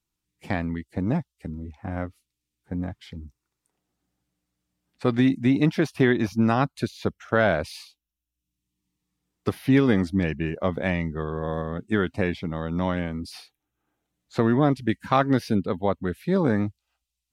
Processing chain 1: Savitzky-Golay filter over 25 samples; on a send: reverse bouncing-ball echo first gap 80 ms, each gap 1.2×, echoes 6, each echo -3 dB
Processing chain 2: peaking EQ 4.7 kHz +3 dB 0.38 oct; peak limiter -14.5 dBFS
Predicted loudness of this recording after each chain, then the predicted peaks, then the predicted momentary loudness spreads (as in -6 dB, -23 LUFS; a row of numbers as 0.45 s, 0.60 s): -22.5 LUFS, -28.5 LUFS; -3.0 dBFS, -14.5 dBFS; 15 LU, 12 LU